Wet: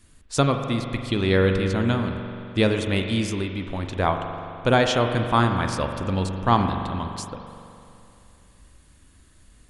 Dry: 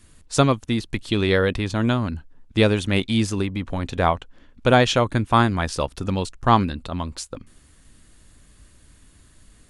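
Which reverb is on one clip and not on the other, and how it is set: spring tank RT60 2.7 s, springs 42 ms, chirp 75 ms, DRR 5 dB; trim -3 dB

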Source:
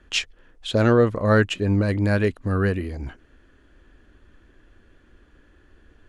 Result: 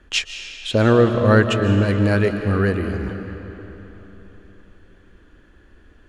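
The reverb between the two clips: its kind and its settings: algorithmic reverb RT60 3.8 s, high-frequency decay 0.75×, pre-delay 105 ms, DRR 6.5 dB; trim +2.5 dB

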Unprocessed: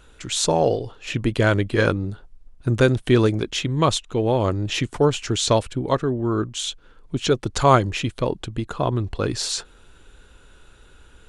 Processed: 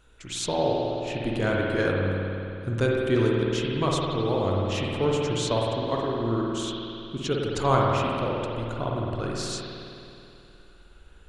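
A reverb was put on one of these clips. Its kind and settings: spring tank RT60 2.8 s, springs 52 ms, chirp 40 ms, DRR -2.5 dB; trim -9 dB

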